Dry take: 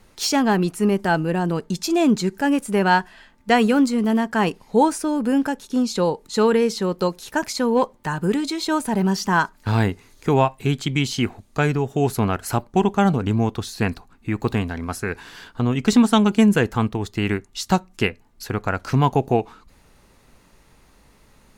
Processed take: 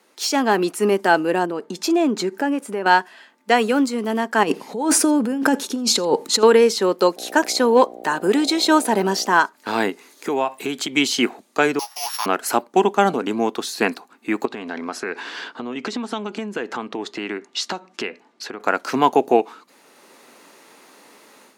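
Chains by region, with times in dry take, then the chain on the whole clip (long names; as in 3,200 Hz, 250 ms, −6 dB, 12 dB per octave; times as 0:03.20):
0:01.45–0:02.86: high-shelf EQ 2,800 Hz −9 dB + downward compressor 3 to 1, threshold −24 dBFS
0:04.43–0:06.43: parametric band 80 Hz +14.5 dB 2.6 octaves + compressor whose output falls as the input rises −23 dBFS + single-tap delay 84 ms −24 dB
0:07.16–0:09.33: parametric band 3,900 Hz +3 dB 0.22 octaves + hum with harmonics 60 Hz, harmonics 13, −41 dBFS −1 dB per octave
0:09.90–0:10.97: high-shelf EQ 11,000 Hz +4 dB + downward compressor 4 to 1, threshold −24 dBFS
0:11.79–0:12.26: samples sorted by size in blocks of 8 samples + Butterworth high-pass 900 Hz + double-tracking delay 17 ms −4.5 dB
0:14.45–0:18.60: low-pass filter 5,100 Hz + downward compressor 12 to 1, threshold −28 dBFS
whole clip: high-pass filter 270 Hz 24 dB per octave; automatic gain control gain up to 10.5 dB; level −1 dB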